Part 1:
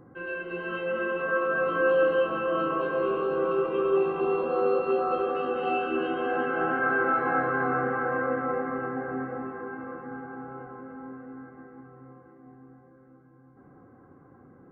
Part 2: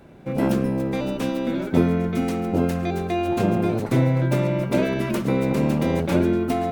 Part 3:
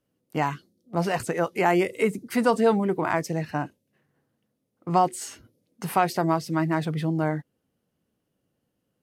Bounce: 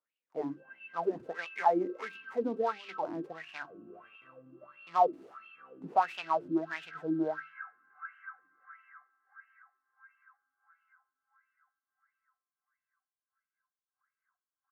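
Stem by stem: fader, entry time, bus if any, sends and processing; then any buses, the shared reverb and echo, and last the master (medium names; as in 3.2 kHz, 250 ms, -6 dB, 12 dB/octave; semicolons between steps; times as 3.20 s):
-6.5 dB, 0.30 s, no send, inverse Chebyshev high-pass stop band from 510 Hz, stop band 50 dB; treble shelf 3.5 kHz +7.5 dB
-8.0 dB, 0.30 s, no send, spectral gate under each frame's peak -20 dB strong; crossover distortion -33 dBFS; auto duck -12 dB, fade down 0.70 s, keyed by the third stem
+3.0 dB, 0.00 s, no send, hum notches 50/100/150/200/250/300/350 Hz; delay time shaken by noise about 3.6 kHz, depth 0.058 ms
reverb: none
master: wah-wah 1.5 Hz 280–2800 Hz, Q 7.3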